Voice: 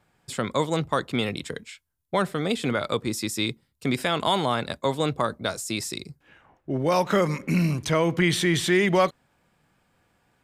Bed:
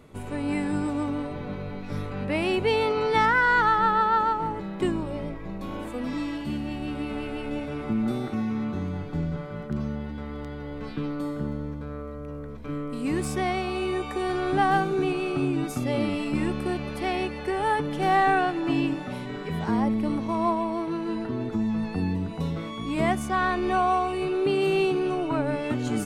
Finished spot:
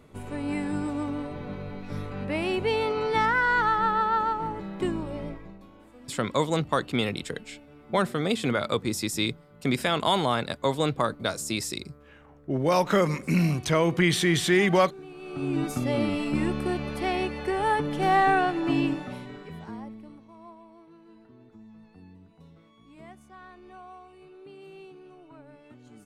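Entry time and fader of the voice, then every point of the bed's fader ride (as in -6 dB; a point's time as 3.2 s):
5.80 s, -0.5 dB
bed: 5.32 s -2.5 dB
5.72 s -18.5 dB
15.09 s -18.5 dB
15.56 s 0 dB
18.9 s 0 dB
20.28 s -23.5 dB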